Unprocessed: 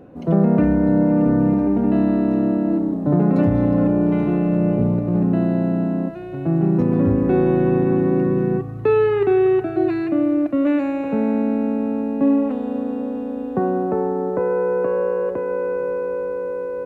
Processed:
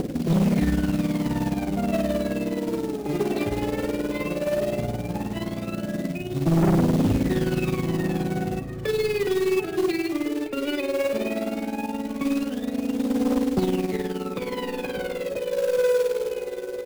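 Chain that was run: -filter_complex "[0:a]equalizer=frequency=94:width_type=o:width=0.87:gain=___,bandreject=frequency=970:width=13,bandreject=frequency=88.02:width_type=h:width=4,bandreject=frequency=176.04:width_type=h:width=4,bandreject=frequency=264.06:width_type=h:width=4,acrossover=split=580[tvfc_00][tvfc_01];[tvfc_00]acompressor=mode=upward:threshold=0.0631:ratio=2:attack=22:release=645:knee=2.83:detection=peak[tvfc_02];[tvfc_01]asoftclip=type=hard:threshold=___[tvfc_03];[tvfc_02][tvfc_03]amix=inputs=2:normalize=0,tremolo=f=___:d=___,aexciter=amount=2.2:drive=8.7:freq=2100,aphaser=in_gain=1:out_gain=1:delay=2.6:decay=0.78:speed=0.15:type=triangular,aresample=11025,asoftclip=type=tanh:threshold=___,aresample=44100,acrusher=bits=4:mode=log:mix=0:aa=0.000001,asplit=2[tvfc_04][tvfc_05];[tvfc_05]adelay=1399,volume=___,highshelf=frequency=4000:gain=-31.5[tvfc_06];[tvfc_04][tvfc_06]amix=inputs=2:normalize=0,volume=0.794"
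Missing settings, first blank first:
-4.5, 0.0335, 19, 0.71, 0.2, 0.224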